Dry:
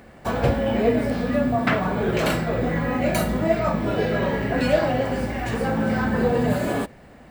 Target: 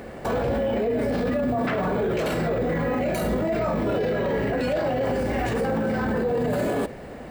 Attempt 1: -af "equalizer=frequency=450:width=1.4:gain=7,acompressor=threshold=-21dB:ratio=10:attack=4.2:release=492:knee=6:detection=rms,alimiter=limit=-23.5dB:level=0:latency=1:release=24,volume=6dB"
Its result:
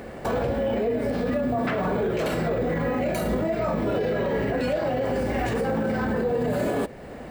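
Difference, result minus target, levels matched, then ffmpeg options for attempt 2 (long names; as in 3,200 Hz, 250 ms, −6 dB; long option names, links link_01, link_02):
downward compressor: peak gain reduction +15 dB
-af "equalizer=frequency=450:width=1.4:gain=7,alimiter=limit=-23.5dB:level=0:latency=1:release=24,volume=6dB"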